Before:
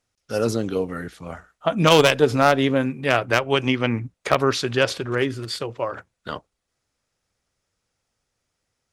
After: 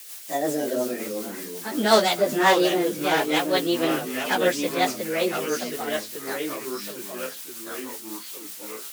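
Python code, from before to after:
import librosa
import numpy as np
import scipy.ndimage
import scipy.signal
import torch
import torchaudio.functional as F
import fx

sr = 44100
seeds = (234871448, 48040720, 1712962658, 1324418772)

y = fx.pitch_bins(x, sr, semitones=5.0)
y = fx.dmg_noise_colour(y, sr, seeds[0], colour='blue', level_db=-38.0)
y = fx.rotary(y, sr, hz=5.5)
y = fx.echo_pitch(y, sr, ms=205, semitones=-3, count=3, db_per_echo=-6.0)
y = scipy.signal.sosfilt(scipy.signal.butter(4, 220.0, 'highpass', fs=sr, output='sos'), y)
y = F.gain(torch.from_numpy(y), 2.0).numpy()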